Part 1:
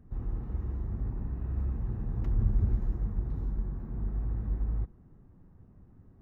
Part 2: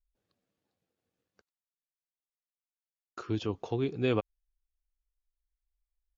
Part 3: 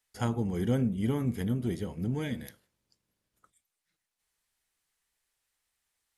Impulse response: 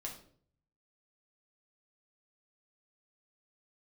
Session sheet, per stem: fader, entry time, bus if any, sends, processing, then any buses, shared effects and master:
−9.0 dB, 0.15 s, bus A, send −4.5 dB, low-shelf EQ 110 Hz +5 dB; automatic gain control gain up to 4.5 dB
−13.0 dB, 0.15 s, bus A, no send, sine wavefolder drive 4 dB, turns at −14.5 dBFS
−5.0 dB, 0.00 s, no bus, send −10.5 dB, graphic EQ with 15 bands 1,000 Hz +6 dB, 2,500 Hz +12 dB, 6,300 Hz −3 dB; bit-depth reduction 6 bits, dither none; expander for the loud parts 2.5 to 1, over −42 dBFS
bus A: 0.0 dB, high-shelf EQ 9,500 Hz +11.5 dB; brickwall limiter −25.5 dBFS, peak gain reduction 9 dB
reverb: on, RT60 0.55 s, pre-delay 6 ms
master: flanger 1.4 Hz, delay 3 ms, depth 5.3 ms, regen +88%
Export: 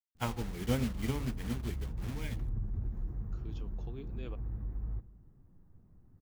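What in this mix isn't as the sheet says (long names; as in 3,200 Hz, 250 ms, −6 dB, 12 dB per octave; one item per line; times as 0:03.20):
stem 2: missing sine wavefolder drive 4 dB, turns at −14.5 dBFS
stem 3 −5.0 dB → +2.0 dB
reverb return −7.0 dB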